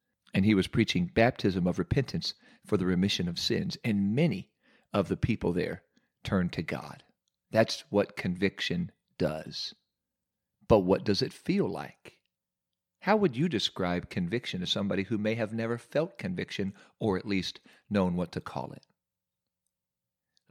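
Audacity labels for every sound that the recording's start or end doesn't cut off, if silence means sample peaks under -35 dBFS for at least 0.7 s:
10.700000	12.080000	sound
13.050000	18.780000	sound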